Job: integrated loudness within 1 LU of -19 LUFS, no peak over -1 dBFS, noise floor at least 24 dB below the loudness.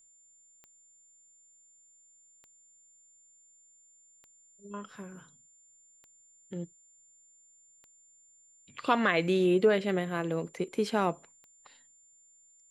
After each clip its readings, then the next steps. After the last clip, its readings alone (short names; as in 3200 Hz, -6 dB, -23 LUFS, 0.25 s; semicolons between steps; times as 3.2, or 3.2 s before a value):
clicks 7; steady tone 7200 Hz; tone level -59 dBFS; loudness -29.5 LUFS; peak -12.0 dBFS; loudness target -19.0 LUFS
-> de-click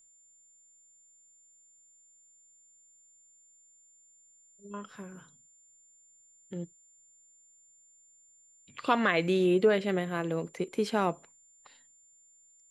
clicks 0; steady tone 7200 Hz; tone level -59 dBFS
-> notch 7200 Hz, Q 30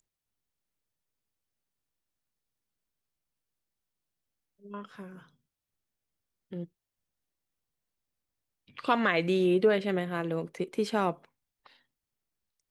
steady tone none; loudness -28.5 LUFS; peak -12.0 dBFS; loudness target -19.0 LUFS
-> gain +9.5 dB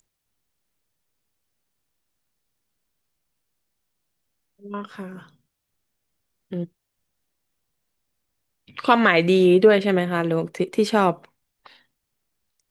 loudness -19.0 LUFS; peak -2.5 dBFS; noise floor -79 dBFS